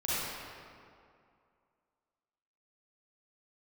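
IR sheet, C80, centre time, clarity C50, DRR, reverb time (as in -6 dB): -3.5 dB, 0.177 s, -7.5 dB, -11.0 dB, 2.3 s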